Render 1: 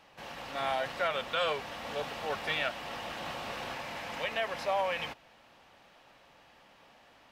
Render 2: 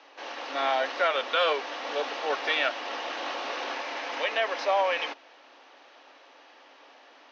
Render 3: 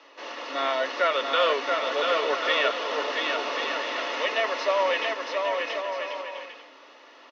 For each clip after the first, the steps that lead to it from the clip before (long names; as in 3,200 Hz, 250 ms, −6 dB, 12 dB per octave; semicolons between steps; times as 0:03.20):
Chebyshev band-pass filter 270–6,200 Hz, order 5; level +6.5 dB
notch comb filter 790 Hz; on a send: bouncing-ball delay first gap 680 ms, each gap 0.6×, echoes 5; on the sum: level +2.5 dB